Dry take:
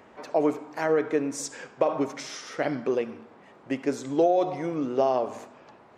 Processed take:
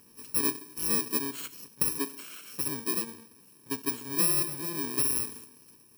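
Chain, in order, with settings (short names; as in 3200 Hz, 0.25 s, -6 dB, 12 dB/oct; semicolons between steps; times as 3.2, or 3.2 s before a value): FFT order left unsorted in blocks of 64 samples; 1.98–2.46 elliptic high-pass 160 Hz; gain -4.5 dB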